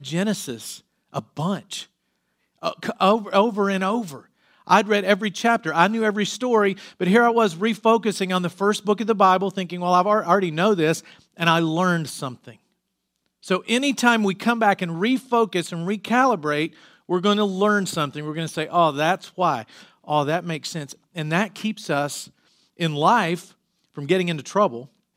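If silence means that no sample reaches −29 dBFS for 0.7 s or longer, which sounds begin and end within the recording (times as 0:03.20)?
0:02.63–0:12.49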